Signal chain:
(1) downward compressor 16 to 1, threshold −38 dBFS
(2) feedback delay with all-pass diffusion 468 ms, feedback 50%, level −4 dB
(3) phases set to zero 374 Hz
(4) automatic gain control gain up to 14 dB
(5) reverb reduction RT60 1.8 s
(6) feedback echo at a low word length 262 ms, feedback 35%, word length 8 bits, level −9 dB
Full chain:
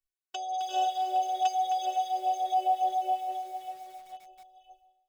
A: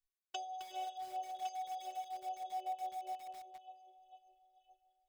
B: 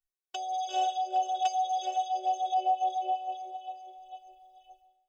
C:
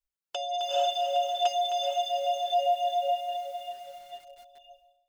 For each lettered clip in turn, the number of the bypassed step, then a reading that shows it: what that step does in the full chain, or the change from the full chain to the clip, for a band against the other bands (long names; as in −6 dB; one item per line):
4, change in crest factor +4.5 dB
6, change in integrated loudness −1.0 LU
3, change in integrated loudness +1.0 LU